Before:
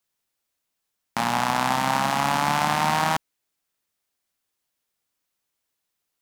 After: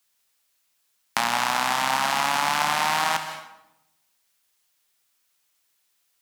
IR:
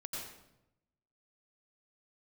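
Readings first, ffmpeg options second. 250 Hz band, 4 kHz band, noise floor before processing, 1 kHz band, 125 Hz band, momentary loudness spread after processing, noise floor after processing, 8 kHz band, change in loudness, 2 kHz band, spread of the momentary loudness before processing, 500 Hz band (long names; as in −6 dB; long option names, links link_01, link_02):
−8.5 dB, +3.0 dB, −80 dBFS, −1.0 dB, −11.0 dB, 7 LU, −71 dBFS, +2.5 dB, −0.5 dB, +2.0 dB, 5 LU, −3.5 dB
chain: -filter_complex "[0:a]tiltshelf=frequency=810:gain=-5.5,acrossover=split=230|5500[link_01][link_02][link_03];[link_01]acompressor=threshold=-51dB:ratio=4[link_04];[link_02]acompressor=threshold=-24dB:ratio=4[link_05];[link_03]acompressor=threshold=-37dB:ratio=4[link_06];[link_04][link_05][link_06]amix=inputs=3:normalize=0,asplit=2[link_07][link_08];[1:a]atrim=start_sample=2205,lowshelf=frequency=230:gain=-9,adelay=68[link_09];[link_08][link_09]afir=irnorm=-1:irlink=0,volume=-7dB[link_10];[link_07][link_10]amix=inputs=2:normalize=0,volume=4dB"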